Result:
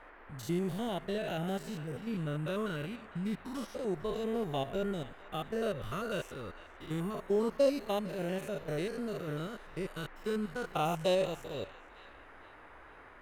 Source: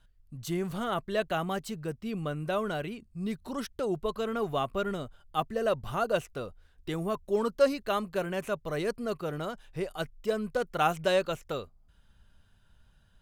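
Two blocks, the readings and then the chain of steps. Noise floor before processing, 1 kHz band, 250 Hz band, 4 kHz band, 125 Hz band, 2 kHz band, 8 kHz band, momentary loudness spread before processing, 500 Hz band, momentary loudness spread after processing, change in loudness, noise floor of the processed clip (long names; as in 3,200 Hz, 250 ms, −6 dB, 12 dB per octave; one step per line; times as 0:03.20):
−63 dBFS, −7.0 dB, −1.5 dB, −3.5 dB, −1.0 dB, −5.5 dB, −3.5 dB, 10 LU, −4.0 dB, 18 LU, −3.5 dB, −54 dBFS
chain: spectrum averaged block by block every 100 ms
auto-filter notch saw down 0.28 Hz 570–1,700 Hz
noise in a band 270–1,900 Hz −55 dBFS
on a send: feedback echo with a band-pass in the loop 454 ms, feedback 47%, band-pass 2,300 Hz, level −14.5 dB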